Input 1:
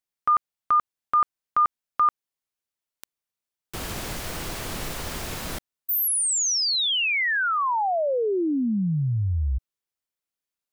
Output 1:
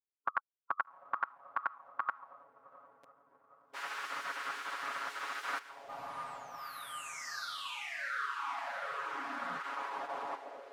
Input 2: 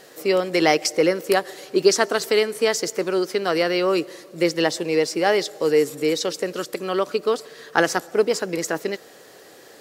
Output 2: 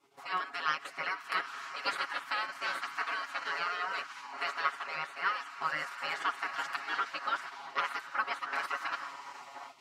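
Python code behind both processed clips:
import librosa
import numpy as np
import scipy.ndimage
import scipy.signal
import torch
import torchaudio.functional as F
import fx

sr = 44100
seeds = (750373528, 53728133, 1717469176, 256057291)

p1 = fx.echo_diffused(x, sr, ms=779, feedback_pct=62, wet_db=-15.5)
p2 = fx.level_steps(p1, sr, step_db=13)
p3 = p1 + (p2 * 10.0 ** (2.5 / 20.0))
p4 = fx.peak_eq(p3, sr, hz=380.0, db=-12.5, octaves=0.39)
p5 = fx.spec_gate(p4, sr, threshold_db=-15, keep='weak')
p6 = fx.auto_wah(p5, sr, base_hz=380.0, top_hz=1300.0, q=2.6, full_db=-33.0, direction='up')
p7 = fx.dynamic_eq(p6, sr, hz=270.0, q=0.82, threshold_db=-57.0, ratio=4.0, max_db=4)
p8 = fx.rider(p7, sr, range_db=4, speed_s=0.5)
y = p8 + 0.95 * np.pad(p8, (int(7.2 * sr / 1000.0), 0))[:len(p8)]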